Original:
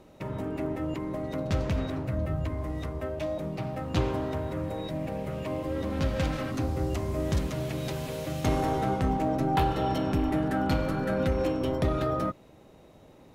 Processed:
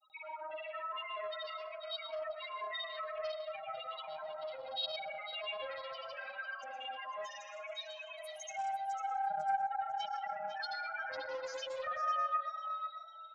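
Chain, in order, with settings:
high-pass filter 1,400 Hz 12 dB per octave
high-shelf EQ 3,800 Hz +5.5 dB
downward compressor 3 to 1, threshold −45 dBFS, peak gain reduction 12.5 dB
spectral peaks only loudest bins 2
granular cloud, pitch spread up and down by 0 semitones
echo with shifted repeats 499 ms, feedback 31%, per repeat +33 Hz, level −10 dB
convolution reverb RT60 0.60 s, pre-delay 103 ms, DRR 6 dB
highs frequency-modulated by the lows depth 0.18 ms
level +14.5 dB

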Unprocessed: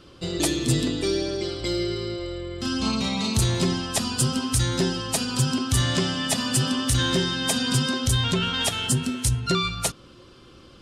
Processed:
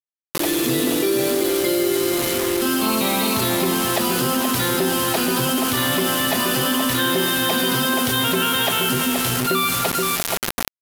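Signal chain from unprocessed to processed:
fade in at the beginning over 0.56 s
high-pass filter 330 Hz 12 dB per octave
high-frequency loss of the air 300 metres
slap from a distant wall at 260 metres, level −16 dB
in parallel at −9.5 dB: soft clipping −27 dBFS, distortion −14 dB
on the sum: automatic gain control gain up to 14 dB
on a send: feedback echo with a low-pass in the loop 476 ms, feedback 20%, low-pass 3,600 Hz, level −6.5 dB
on the sum: bit reduction 4 bits
parametric band 12,000 Hz +11.5 dB 0.8 octaves
envelope flattener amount 70%
level −8.5 dB

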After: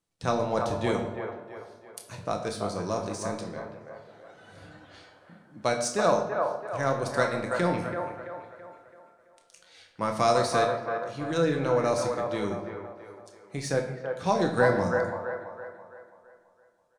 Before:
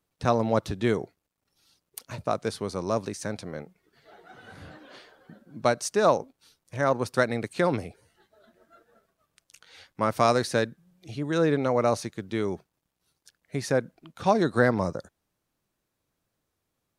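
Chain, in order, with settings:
low-pass filter 10,000 Hz 24 dB per octave
high-shelf EQ 5,000 Hz +7 dB
tuned comb filter 99 Hz, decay 0.48 s, harmonics all, mix 60%
in parallel at −11 dB: dead-zone distortion −41 dBFS
on the sum: double-tracking delay 29 ms −10.5 dB
on a send: delay with a band-pass on its return 332 ms, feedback 44%, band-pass 900 Hz, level −3.5 dB
on the sum: rectangular room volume 400 cubic metres, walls mixed, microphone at 0.72 metres

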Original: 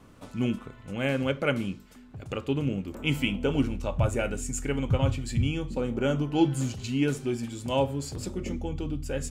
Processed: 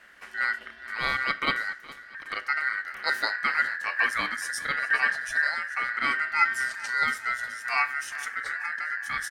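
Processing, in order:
ring modulation 1,700 Hz
on a send: repeating echo 415 ms, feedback 53%, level −19 dB
on the sum: level +2.5 dB

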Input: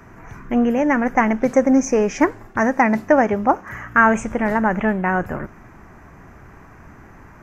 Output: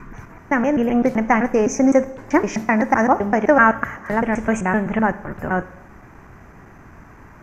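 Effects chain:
slices reordered back to front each 128 ms, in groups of 4
four-comb reverb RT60 0.86 s, combs from 32 ms, DRR 15.5 dB

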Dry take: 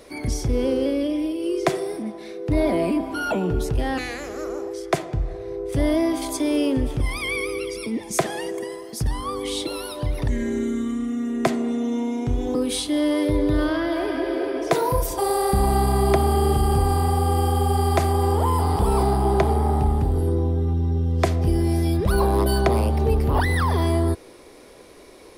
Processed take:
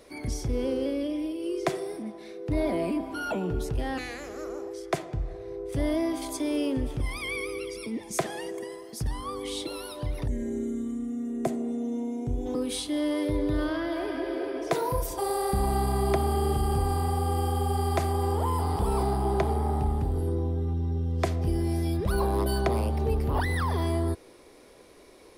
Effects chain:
0:10.26–0:12.46: flat-topped bell 2,300 Hz −10 dB 2.8 octaves
level −6.5 dB

